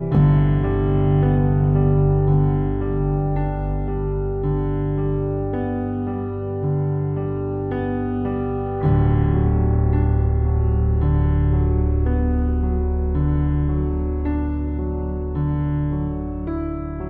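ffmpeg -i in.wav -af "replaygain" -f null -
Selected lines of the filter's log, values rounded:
track_gain = +4.2 dB
track_peak = 0.367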